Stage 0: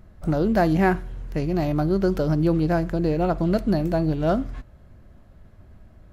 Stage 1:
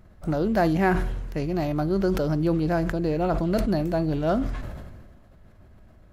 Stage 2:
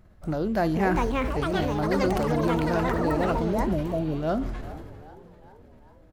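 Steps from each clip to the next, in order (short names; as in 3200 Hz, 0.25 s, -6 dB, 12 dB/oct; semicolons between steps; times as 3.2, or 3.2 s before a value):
low shelf 240 Hz -3.5 dB; sustainer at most 34 dB/s; gain -1.5 dB
spectral repair 3.52–4.13, 720–5300 Hz; frequency-shifting echo 0.395 s, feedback 56%, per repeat +67 Hz, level -18 dB; echoes that change speed 0.571 s, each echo +6 st, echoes 3; gain -3 dB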